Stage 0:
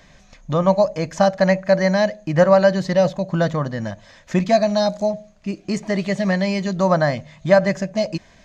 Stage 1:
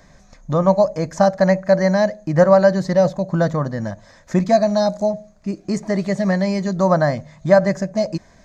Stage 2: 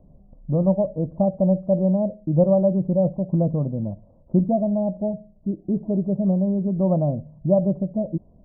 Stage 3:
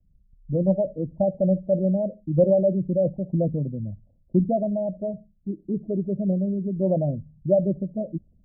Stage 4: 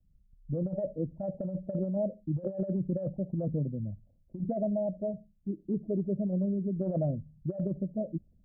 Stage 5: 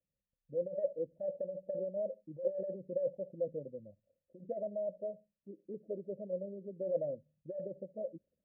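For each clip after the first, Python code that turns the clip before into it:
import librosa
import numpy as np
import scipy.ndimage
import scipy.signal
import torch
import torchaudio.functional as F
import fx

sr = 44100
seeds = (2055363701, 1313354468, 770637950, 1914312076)

y1 = fx.peak_eq(x, sr, hz=2900.0, db=-12.5, octaves=0.79)
y1 = y1 * librosa.db_to_amplitude(1.5)
y2 = scipy.ndimage.gaussian_filter1d(y1, 15.0, mode='constant')
y3 = fx.envelope_sharpen(y2, sr, power=2.0)
y3 = fx.band_widen(y3, sr, depth_pct=40)
y3 = y3 * librosa.db_to_amplitude(-2.5)
y4 = fx.over_compress(y3, sr, threshold_db=-23.0, ratio=-0.5)
y4 = y4 * librosa.db_to_amplitude(-6.5)
y5 = fx.vowel_filter(y4, sr, vowel='e')
y5 = y5 * librosa.db_to_amplitude(5.0)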